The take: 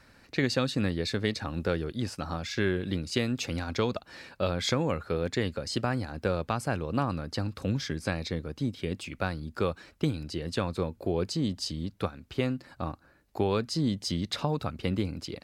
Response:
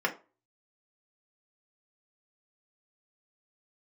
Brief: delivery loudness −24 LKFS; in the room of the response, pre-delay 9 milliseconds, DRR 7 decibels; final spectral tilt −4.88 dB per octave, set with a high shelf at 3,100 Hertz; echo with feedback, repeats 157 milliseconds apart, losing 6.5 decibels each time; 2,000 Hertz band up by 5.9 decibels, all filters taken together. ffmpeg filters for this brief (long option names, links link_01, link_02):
-filter_complex "[0:a]equalizer=frequency=2000:width_type=o:gain=6.5,highshelf=frequency=3100:gain=3,aecho=1:1:157|314|471|628|785|942:0.473|0.222|0.105|0.0491|0.0231|0.0109,asplit=2[link_01][link_02];[1:a]atrim=start_sample=2205,adelay=9[link_03];[link_02][link_03]afir=irnorm=-1:irlink=0,volume=-17dB[link_04];[link_01][link_04]amix=inputs=2:normalize=0,volume=4.5dB"